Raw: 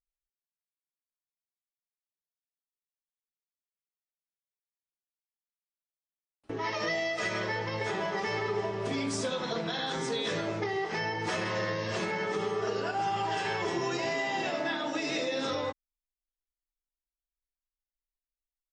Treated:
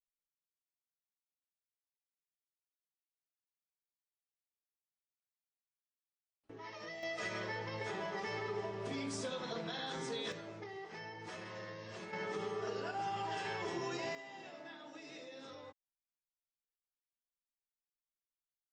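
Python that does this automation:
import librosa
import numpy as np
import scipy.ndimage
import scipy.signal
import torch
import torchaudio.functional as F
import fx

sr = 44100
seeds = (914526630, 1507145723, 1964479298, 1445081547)

y = fx.gain(x, sr, db=fx.steps((0.0, -16.0), (7.03, -8.5), (10.32, -15.5), (12.13, -8.5), (14.15, -19.5)))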